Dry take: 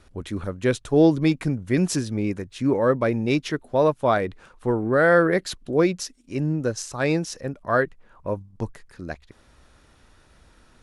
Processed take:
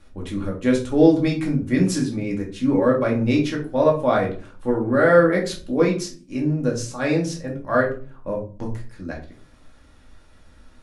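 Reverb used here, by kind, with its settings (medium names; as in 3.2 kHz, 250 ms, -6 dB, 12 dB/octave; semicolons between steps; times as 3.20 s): simulated room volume 260 m³, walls furnished, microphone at 2.3 m; trim -3.5 dB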